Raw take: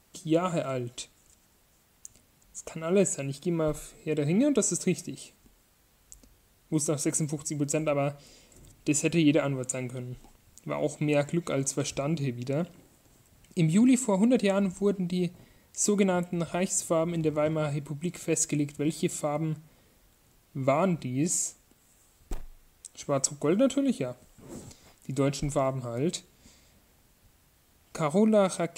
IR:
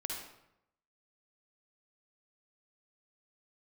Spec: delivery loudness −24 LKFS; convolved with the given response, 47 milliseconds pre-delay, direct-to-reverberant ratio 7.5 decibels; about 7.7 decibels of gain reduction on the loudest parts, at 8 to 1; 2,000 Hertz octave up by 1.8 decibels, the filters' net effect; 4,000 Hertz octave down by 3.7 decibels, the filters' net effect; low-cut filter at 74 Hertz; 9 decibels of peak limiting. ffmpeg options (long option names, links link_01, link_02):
-filter_complex "[0:a]highpass=74,equalizer=frequency=2000:width_type=o:gain=4.5,equalizer=frequency=4000:width_type=o:gain=-7,acompressor=threshold=-26dB:ratio=8,alimiter=limit=-24dB:level=0:latency=1,asplit=2[link_01][link_02];[1:a]atrim=start_sample=2205,adelay=47[link_03];[link_02][link_03]afir=irnorm=-1:irlink=0,volume=-8.5dB[link_04];[link_01][link_04]amix=inputs=2:normalize=0,volume=10dB"